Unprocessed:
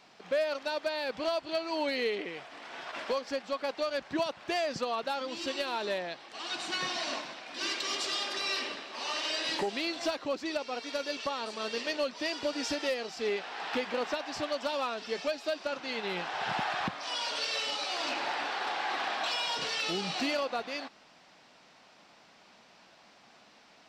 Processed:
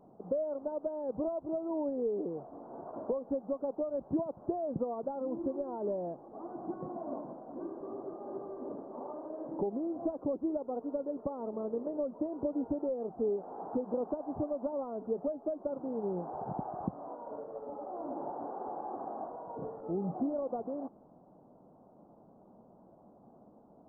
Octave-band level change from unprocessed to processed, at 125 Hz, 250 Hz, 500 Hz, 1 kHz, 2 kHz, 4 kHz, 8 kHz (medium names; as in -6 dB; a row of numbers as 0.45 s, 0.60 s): +4.5 dB, +3.5 dB, -1.0 dB, -7.0 dB, under -30 dB, under -40 dB, under -35 dB